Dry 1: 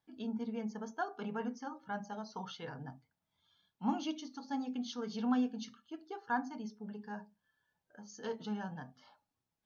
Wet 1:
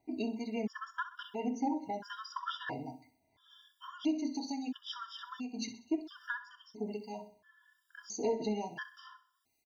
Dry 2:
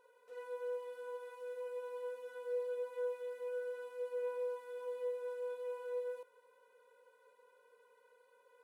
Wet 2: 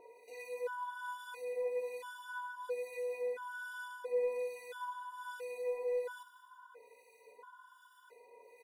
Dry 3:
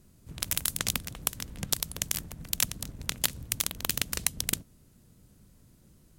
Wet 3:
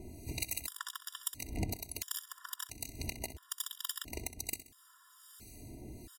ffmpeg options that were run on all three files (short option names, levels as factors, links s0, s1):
-filter_complex "[0:a]lowshelf=f=64:g=-10.5,aecho=1:1:2.9:0.72,acompressor=threshold=0.01:ratio=16,acrossover=split=1800[s0][s1];[s0]aeval=exprs='val(0)*(1-0.7/2+0.7/2*cos(2*PI*1.2*n/s))':c=same[s2];[s1]aeval=exprs='val(0)*(1-0.7/2-0.7/2*cos(2*PI*1.2*n/s))':c=same[s3];[s2][s3]amix=inputs=2:normalize=0,asoftclip=type=tanh:threshold=0.0211,aecho=1:1:64|128|192|256:0.2|0.0878|0.0386|0.017,afftfilt=real='re*gt(sin(2*PI*0.74*pts/sr)*(1-2*mod(floor(b*sr/1024/960),2)),0)':imag='im*gt(sin(2*PI*0.74*pts/sr)*(1-2*mod(floor(b*sr/1024/960),2)),0)':win_size=1024:overlap=0.75,volume=5.31"